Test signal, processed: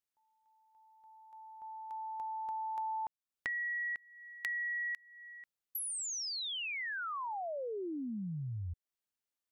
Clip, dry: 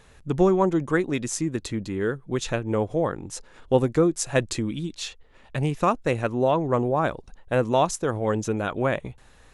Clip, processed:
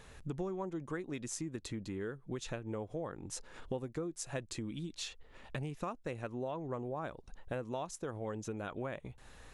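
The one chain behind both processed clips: compression 4:1, threshold -38 dBFS; trim -1.5 dB

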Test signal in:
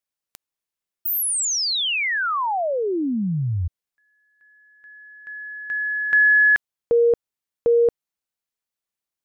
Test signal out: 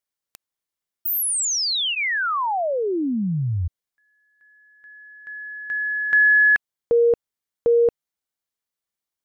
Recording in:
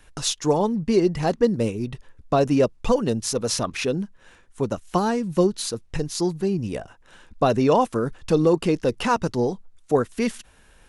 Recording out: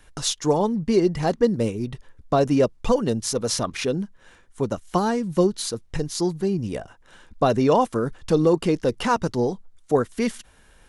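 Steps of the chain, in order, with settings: band-stop 2.6 kHz, Q 16

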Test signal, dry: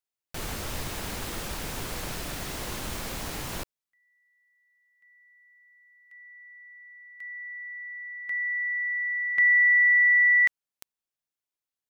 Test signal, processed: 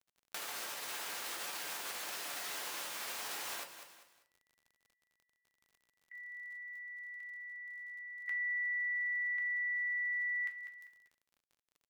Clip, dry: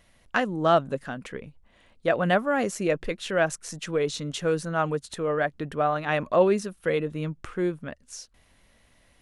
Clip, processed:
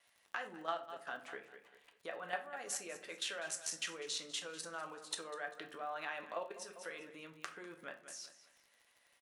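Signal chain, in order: gate with hold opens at -53 dBFS, range -17 dB; level held to a coarse grid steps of 19 dB; on a send: feedback delay 197 ms, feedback 32%, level -16.5 dB; on the sum: compression 4:1, threshold -45 dBFS; Bessel high-pass 850 Hz, order 2; simulated room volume 32 m³, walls mixed, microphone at 0.34 m; crackle 48 per s -61 dBFS; trim +7 dB

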